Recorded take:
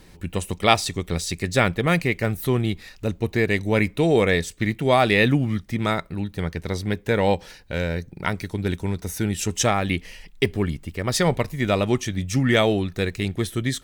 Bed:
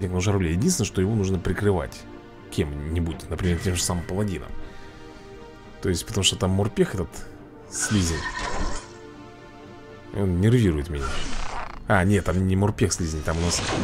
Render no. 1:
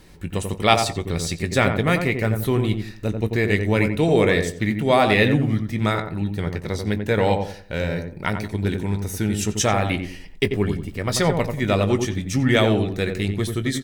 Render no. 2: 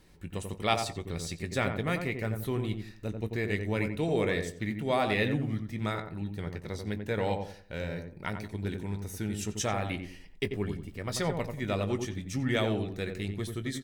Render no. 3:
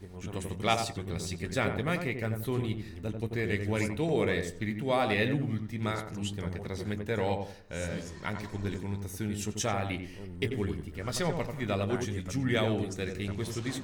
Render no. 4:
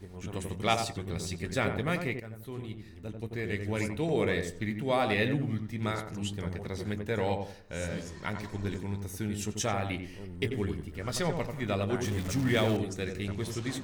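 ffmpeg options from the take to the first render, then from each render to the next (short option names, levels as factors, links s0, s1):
-filter_complex "[0:a]asplit=2[s0][s1];[s1]adelay=19,volume=0.251[s2];[s0][s2]amix=inputs=2:normalize=0,asplit=2[s3][s4];[s4]adelay=90,lowpass=f=1100:p=1,volume=0.596,asplit=2[s5][s6];[s6]adelay=90,lowpass=f=1100:p=1,volume=0.34,asplit=2[s7][s8];[s8]adelay=90,lowpass=f=1100:p=1,volume=0.34,asplit=2[s9][s10];[s10]adelay=90,lowpass=f=1100:p=1,volume=0.34[s11];[s5][s7][s9][s11]amix=inputs=4:normalize=0[s12];[s3][s12]amix=inputs=2:normalize=0"
-af "volume=0.282"
-filter_complex "[1:a]volume=0.1[s0];[0:a][s0]amix=inputs=2:normalize=0"
-filter_complex "[0:a]asettb=1/sr,asplit=3[s0][s1][s2];[s0]atrim=end=12.044[s3];[s1]atrim=start=12.04:end=12.77,asetpts=PTS-STARTPTS,afade=t=in:d=0.004:c=qsin,afade=t=out:st=0.726:d=0.004:c=qsin,aeval=exprs='val(0)+0.5*0.0188*sgn(val(0))':c=same[s4];[s2]atrim=start=12.766[s5];[s3][s4]acrossfade=d=0.004:c1=hsin:c2=qsin[s6];[s6][s5]acrossfade=d=0.004:c1=qsin:c2=hsin,asplit=2[s7][s8];[s7]atrim=end=2.2,asetpts=PTS-STARTPTS,afade=t=out:st=2.196:d=0.004:c=hsin:silence=0.237137[s9];[s8]atrim=start=2.2,asetpts=PTS-STARTPTS,afade=t=in:d=2.06:silence=0.237137[s10];[s9][s10]concat=n=2:v=0:a=1"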